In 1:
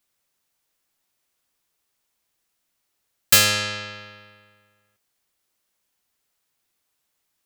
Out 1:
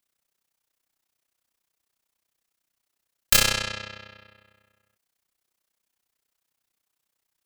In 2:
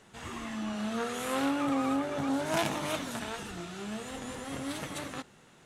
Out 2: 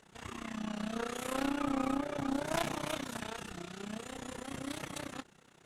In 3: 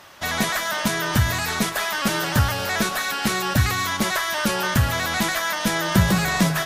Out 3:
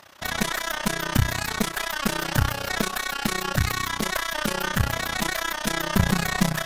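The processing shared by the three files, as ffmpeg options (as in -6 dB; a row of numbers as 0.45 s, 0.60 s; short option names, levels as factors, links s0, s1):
-af "tremolo=f=31:d=0.889,aeval=exprs='0.631*(cos(1*acos(clip(val(0)/0.631,-1,1)))-cos(1*PI/2))+0.0501*(cos(8*acos(clip(val(0)/0.631,-1,1)))-cos(8*PI/2))':c=same"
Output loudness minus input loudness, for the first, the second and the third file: -4.0 LU, -4.0 LU, -3.5 LU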